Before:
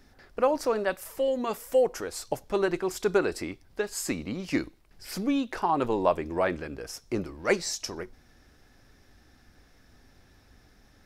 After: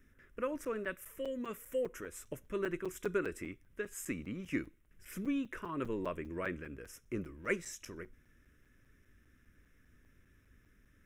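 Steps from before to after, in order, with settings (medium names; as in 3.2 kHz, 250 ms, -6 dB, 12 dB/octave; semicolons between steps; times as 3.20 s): static phaser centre 1.9 kHz, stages 4; crackling interface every 0.20 s, samples 256, zero; trim -6.5 dB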